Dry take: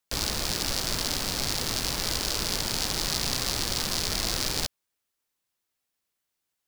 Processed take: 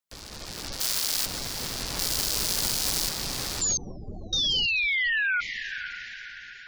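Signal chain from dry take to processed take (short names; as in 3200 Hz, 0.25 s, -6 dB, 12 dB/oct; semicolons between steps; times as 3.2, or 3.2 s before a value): limiter -20 dBFS, peak gain reduction 11.5 dB; 0.8–1.26 tilt +3.5 dB/oct; 3.61–5.41 painted sound fall 1400–7300 Hz -29 dBFS; AGC gain up to 10.5 dB; 1.99–3.09 high shelf 5100 Hz +11.5 dB; diffused feedback echo 0.51 s, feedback 49%, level -10 dB; spectral gate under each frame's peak -25 dB strong; 3.77–4.33 inverse Chebyshev band-stop 1400–7200 Hz, stop band 40 dB; gain -7 dB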